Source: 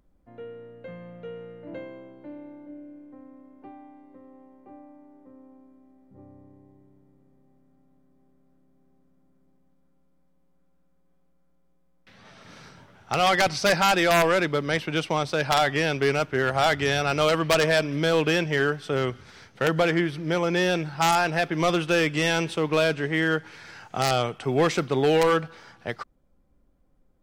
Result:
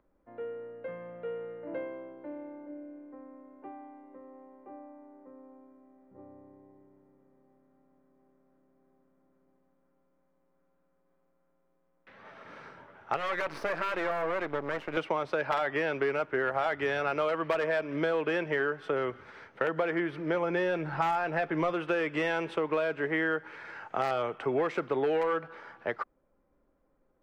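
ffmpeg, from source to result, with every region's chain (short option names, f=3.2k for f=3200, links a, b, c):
-filter_complex "[0:a]asettb=1/sr,asplit=3[a][b][c];[a]atrim=end=13.164[d];[b]atrim=start=13.16:end=14.97,asetpts=PTS-STARTPTS,afade=t=in:d=0.004:c=qsin,afade=t=out:st=1.806:d=0.004:c=qsin,asuperstop=centerf=840:order=12:qfactor=3.6,acompressor=threshold=-25dB:ratio=2:attack=3.2:release=140:knee=1:detection=peak,aeval=exprs='max(val(0),0)':c=same[e];[c]atrim=start=14.966[f];[d][e]acrossfade=d=0.004:c1=hsin:c2=qsin[g];[g][f]acrossfade=d=0.004:c1=qsin:c2=hsin,asettb=1/sr,asplit=3[h][i][j];[h]atrim=end=20.344[k];[i]atrim=start=20.34:end=21.73,asetpts=PTS-STARTPTS,afade=t=in:d=0.004:c=qsin,afade=t=out:st=1.386:d=0.004:c=qsin,lowshelf=f=170:g=7.5,acompressor=mode=upward:threshold=-24dB:ratio=2.5:attack=3.2:release=140:knee=2.83:detection=peak,asplit=2[l][m];[m]adelay=13,volume=-13dB[n];[l][n]amix=inputs=2:normalize=0,atrim=end_sample=61299[o];[j]atrim=start=21.726[p];[k][o]acrossfade=d=0.004:c1=hsin:c2=qsin[q];[q][p]acrossfade=d=0.004:c1=qsin:c2=hsin,acrossover=split=310 2300:gain=0.2 1 0.0891[r][s][t];[r][s][t]amix=inputs=3:normalize=0,bandreject=f=740:w=12,acompressor=threshold=-29dB:ratio=6,volume=3dB"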